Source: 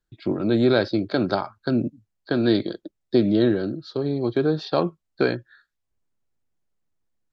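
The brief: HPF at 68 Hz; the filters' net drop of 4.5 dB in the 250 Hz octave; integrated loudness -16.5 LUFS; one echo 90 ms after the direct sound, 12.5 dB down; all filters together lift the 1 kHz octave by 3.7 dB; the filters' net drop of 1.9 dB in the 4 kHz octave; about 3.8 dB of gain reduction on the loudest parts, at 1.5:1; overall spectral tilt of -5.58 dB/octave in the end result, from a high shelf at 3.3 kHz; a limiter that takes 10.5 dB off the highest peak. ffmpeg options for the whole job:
-af "highpass=68,equalizer=f=250:t=o:g=-6.5,equalizer=f=1000:t=o:g=5.5,highshelf=f=3300:g=3.5,equalizer=f=4000:t=o:g=-4.5,acompressor=threshold=0.0501:ratio=1.5,alimiter=limit=0.106:level=0:latency=1,aecho=1:1:90:0.237,volume=5.31"

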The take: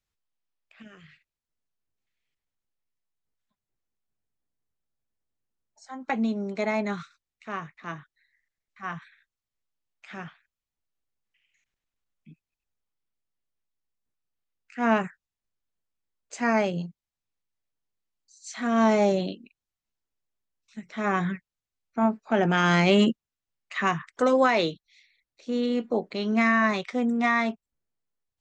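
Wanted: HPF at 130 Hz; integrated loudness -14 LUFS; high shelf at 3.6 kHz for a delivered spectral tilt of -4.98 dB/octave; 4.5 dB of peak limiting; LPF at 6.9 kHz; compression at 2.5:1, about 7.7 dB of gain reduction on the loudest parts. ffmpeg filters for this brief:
-af "highpass=130,lowpass=6900,highshelf=f=3600:g=-8,acompressor=threshold=0.0398:ratio=2.5,volume=8.91,alimiter=limit=0.708:level=0:latency=1"

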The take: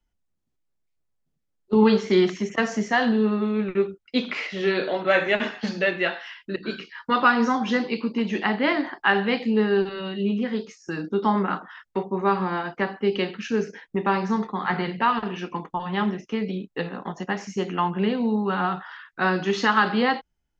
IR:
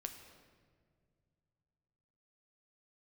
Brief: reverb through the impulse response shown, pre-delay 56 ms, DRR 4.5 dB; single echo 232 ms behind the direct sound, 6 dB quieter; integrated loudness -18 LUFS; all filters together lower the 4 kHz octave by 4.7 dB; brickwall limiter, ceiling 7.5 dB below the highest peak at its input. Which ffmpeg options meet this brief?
-filter_complex "[0:a]equalizer=f=4000:t=o:g=-7,alimiter=limit=0.188:level=0:latency=1,aecho=1:1:232:0.501,asplit=2[s0][s1];[1:a]atrim=start_sample=2205,adelay=56[s2];[s1][s2]afir=irnorm=-1:irlink=0,volume=0.841[s3];[s0][s3]amix=inputs=2:normalize=0,volume=1.88"

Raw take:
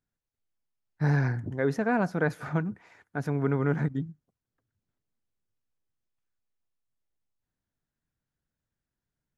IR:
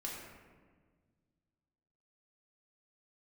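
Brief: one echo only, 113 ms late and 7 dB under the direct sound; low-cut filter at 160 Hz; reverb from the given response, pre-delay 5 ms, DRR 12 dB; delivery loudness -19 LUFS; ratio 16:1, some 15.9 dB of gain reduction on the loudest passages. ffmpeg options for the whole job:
-filter_complex "[0:a]highpass=160,acompressor=threshold=0.0141:ratio=16,aecho=1:1:113:0.447,asplit=2[s0][s1];[1:a]atrim=start_sample=2205,adelay=5[s2];[s1][s2]afir=irnorm=-1:irlink=0,volume=0.251[s3];[s0][s3]amix=inputs=2:normalize=0,volume=15"

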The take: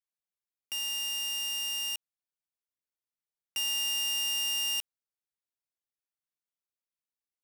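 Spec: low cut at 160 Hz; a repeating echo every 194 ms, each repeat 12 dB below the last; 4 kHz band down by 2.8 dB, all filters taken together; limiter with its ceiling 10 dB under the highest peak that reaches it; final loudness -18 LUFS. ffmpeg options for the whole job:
-af "highpass=160,equalizer=f=4000:t=o:g=-5.5,alimiter=level_in=4.22:limit=0.0631:level=0:latency=1,volume=0.237,aecho=1:1:194|388|582:0.251|0.0628|0.0157,volume=12.6"

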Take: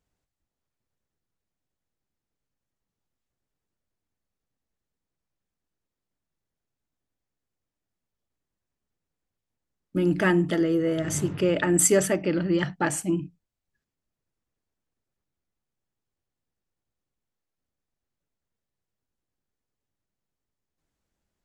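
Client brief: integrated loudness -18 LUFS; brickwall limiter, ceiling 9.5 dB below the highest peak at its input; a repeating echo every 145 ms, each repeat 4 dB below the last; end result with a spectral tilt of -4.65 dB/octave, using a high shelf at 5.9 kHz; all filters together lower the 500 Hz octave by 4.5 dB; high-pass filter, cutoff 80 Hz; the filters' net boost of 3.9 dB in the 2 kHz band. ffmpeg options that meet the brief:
-af "highpass=80,equalizer=f=500:t=o:g=-7,equalizer=f=2000:t=o:g=5.5,highshelf=f=5900:g=-5,alimiter=limit=0.126:level=0:latency=1,aecho=1:1:145|290|435|580|725|870|1015|1160|1305:0.631|0.398|0.25|0.158|0.0994|0.0626|0.0394|0.0249|0.0157,volume=2.82"

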